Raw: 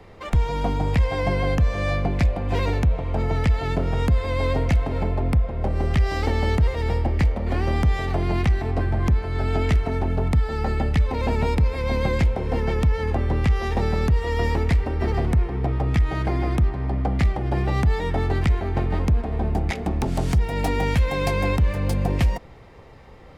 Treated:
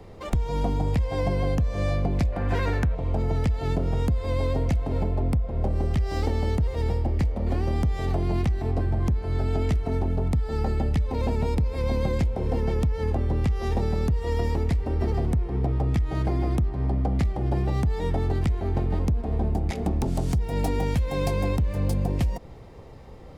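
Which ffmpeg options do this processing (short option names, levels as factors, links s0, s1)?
-filter_complex "[0:a]asettb=1/sr,asplit=3[s0][s1][s2];[s0]atrim=end=2.324[s3];[s1]atrim=start=2.32:end=2.95,asetpts=PTS-STARTPTS,afade=t=in:d=0.004:c=qsin,afade=t=out:st=0.626:d=0.004:c=qsin,equalizer=f=1600:w=1.5:g=14.5[s4];[s2]atrim=start=2.946[s5];[s3][s4]acrossfade=d=0.004:c1=hsin:c2=qsin[s6];[s6][s5]acrossfade=d=0.004:c1=qsin:c2=hsin,equalizer=f=1900:t=o:w=2.1:g=-8.5,acompressor=threshold=0.0708:ratio=6,volume=1.33"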